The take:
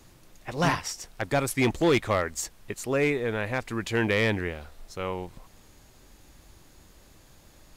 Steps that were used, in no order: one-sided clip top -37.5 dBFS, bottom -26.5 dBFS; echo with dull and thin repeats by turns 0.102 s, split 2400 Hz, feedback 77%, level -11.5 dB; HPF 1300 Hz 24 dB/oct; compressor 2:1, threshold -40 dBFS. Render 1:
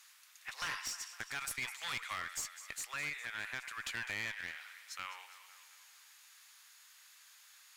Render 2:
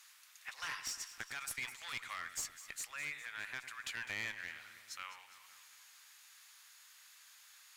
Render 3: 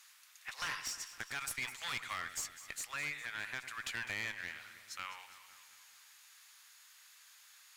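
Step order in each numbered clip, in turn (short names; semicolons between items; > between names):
HPF > compressor > echo with dull and thin repeats by turns > one-sided clip; compressor > HPF > one-sided clip > echo with dull and thin repeats by turns; HPF > compressor > one-sided clip > echo with dull and thin repeats by turns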